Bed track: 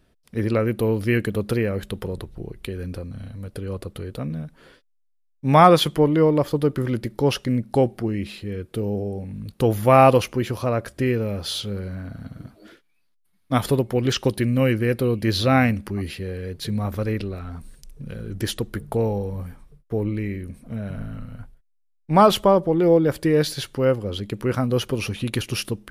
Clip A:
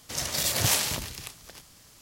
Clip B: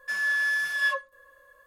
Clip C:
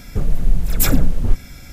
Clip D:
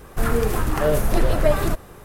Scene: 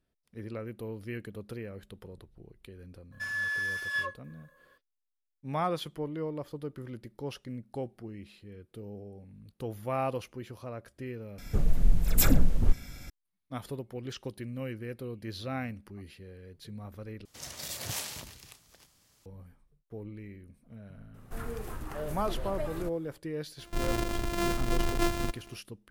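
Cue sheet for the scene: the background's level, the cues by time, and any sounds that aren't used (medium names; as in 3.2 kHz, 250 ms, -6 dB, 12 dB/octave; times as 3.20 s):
bed track -18 dB
3.12 s: add B -6.5 dB
11.38 s: replace with C -7 dB
17.25 s: replace with A -12 dB
21.14 s: add D -17.5 dB
23.56 s: add D -10.5 dB, fades 0.05 s + sorted samples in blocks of 128 samples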